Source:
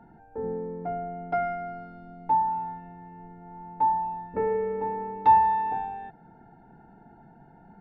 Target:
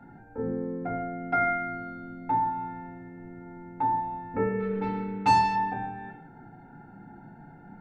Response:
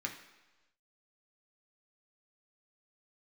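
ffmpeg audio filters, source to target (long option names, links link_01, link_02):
-filter_complex "[0:a]asplit=3[link_01][link_02][link_03];[link_01]afade=type=out:start_time=4.59:duration=0.02[link_04];[link_02]adynamicsmooth=sensitivity=1.5:basefreq=610,afade=type=in:start_time=4.59:duration=0.02,afade=type=out:start_time=5.55:duration=0.02[link_05];[link_03]afade=type=in:start_time=5.55:duration=0.02[link_06];[link_04][link_05][link_06]amix=inputs=3:normalize=0[link_07];[1:a]atrim=start_sample=2205,afade=type=out:start_time=0.25:duration=0.01,atrim=end_sample=11466[link_08];[link_07][link_08]afir=irnorm=-1:irlink=0,volume=4dB"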